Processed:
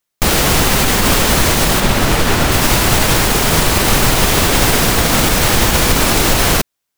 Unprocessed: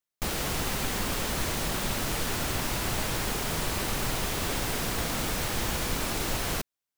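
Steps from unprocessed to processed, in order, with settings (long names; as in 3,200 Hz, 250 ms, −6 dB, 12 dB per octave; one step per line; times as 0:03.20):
0:01.80–0:02.52: high-shelf EQ 4,200 Hz −7 dB
boost into a limiter +19.5 dB
expander for the loud parts 1.5 to 1, over −22 dBFS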